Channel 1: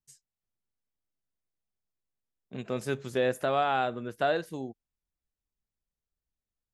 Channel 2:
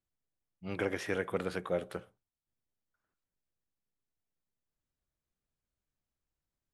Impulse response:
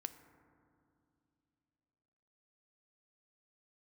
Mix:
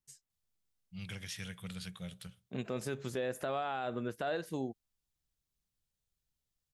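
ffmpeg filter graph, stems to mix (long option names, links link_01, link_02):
-filter_complex "[0:a]volume=0dB[link_01];[1:a]firequalizer=gain_entry='entry(180,0);entry(290,-24);entry(3300,4)':delay=0.05:min_phase=1,adelay=300,volume=-0.5dB[link_02];[link_01][link_02]amix=inputs=2:normalize=0,alimiter=level_in=2dB:limit=-24dB:level=0:latency=1:release=115,volume=-2dB"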